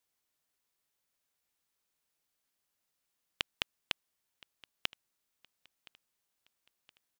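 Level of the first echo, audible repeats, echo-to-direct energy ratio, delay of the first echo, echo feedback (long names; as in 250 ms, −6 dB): −23.0 dB, 2, −22.0 dB, 1,019 ms, 45%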